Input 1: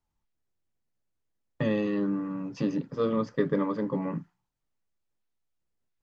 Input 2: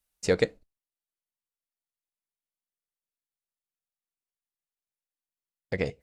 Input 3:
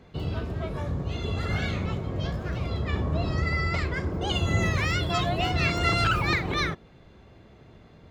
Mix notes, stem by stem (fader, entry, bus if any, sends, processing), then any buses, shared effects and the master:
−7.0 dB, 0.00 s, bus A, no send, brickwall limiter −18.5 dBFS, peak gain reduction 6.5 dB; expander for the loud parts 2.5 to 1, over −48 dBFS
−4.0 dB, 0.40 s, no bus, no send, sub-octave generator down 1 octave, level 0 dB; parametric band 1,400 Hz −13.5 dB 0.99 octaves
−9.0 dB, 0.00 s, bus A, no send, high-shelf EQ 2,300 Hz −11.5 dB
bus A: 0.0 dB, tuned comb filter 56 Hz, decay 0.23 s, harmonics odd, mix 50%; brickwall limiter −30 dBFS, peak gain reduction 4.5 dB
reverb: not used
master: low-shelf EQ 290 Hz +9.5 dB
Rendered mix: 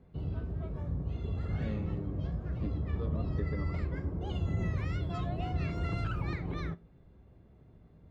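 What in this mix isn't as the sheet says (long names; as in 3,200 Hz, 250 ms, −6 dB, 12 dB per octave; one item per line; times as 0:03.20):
stem 1: missing brickwall limiter −18.5 dBFS, peak gain reduction 6.5 dB
stem 2: muted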